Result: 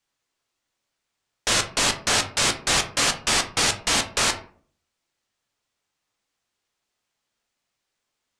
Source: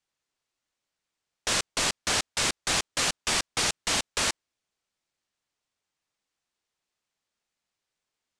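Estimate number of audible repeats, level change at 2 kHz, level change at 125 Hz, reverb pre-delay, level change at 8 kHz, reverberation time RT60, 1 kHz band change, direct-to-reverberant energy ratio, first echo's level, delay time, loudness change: no echo, +5.5 dB, +6.5 dB, 6 ms, +5.0 dB, 0.50 s, +6.0 dB, 5.0 dB, no echo, no echo, +5.0 dB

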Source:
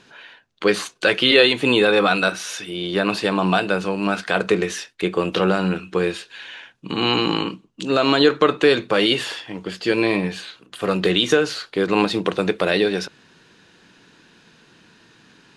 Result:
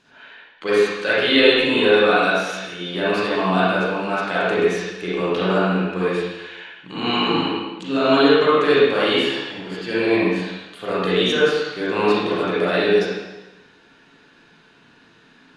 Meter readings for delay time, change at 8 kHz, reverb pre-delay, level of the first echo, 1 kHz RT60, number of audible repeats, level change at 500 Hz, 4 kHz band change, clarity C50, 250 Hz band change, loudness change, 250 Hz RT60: no echo, no reading, 34 ms, no echo, 1.1 s, no echo, +2.0 dB, -1.5 dB, -4.0 dB, 0.0 dB, +0.5 dB, 0.95 s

